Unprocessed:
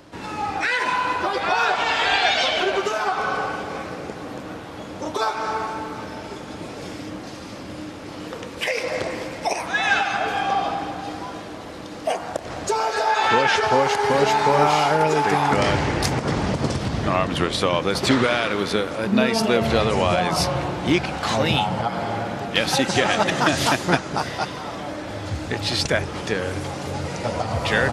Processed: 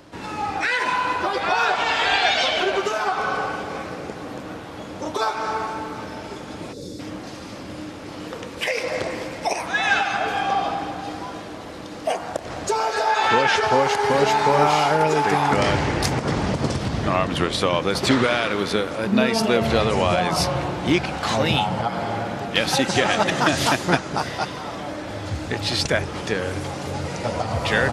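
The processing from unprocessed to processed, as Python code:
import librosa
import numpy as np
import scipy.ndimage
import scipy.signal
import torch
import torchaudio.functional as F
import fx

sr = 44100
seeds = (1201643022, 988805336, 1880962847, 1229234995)

y = fx.spec_box(x, sr, start_s=6.73, length_s=0.26, low_hz=590.0, high_hz=3400.0, gain_db=-17)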